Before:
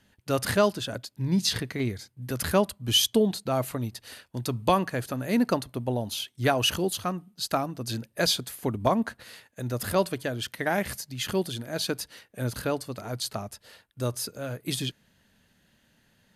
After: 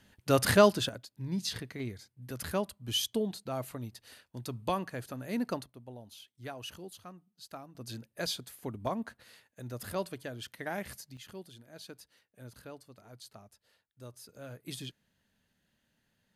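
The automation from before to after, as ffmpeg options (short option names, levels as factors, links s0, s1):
-af "asetnsamples=n=441:p=0,asendcmd='0.89 volume volume -9.5dB;5.66 volume volume -19dB;7.75 volume volume -10.5dB;11.17 volume volume -19dB;14.29 volume volume -11.5dB',volume=1.12"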